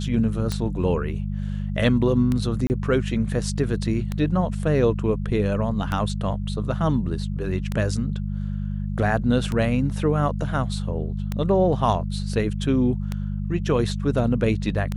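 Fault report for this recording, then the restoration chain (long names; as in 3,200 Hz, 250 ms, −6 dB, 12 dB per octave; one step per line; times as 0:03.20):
mains hum 50 Hz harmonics 4 −27 dBFS
scratch tick 33 1/3 rpm −13 dBFS
0:02.67–0:02.70: drop-out 29 ms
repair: click removal
hum removal 50 Hz, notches 4
repair the gap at 0:02.67, 29 ms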